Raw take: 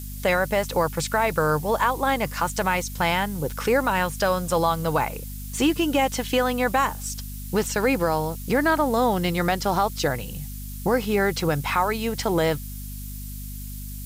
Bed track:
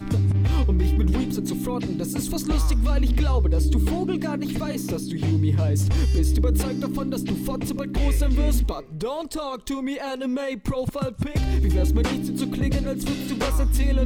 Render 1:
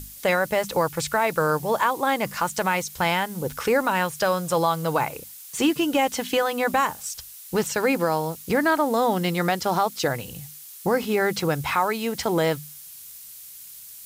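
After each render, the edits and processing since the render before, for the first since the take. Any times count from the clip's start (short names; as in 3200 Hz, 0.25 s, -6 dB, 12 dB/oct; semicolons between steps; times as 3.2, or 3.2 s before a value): notches 50/100/150/200/250 Hz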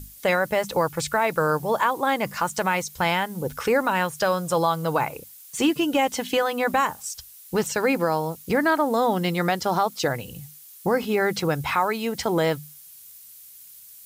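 denoiser 6 dB, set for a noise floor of -43 dBFS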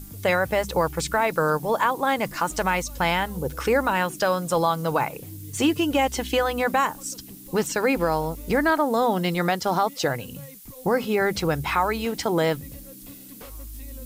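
add bed track -19 dB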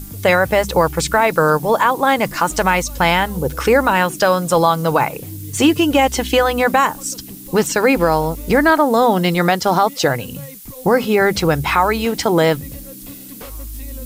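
gain +8 dB; limiter -3 dBFS, peak gain reduction 2.5 dB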